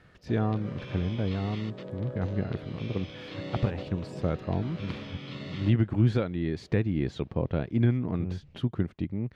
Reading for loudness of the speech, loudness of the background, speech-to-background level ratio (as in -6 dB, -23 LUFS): -30.5 LUFS, -41.5 LUFS, 11.0 dB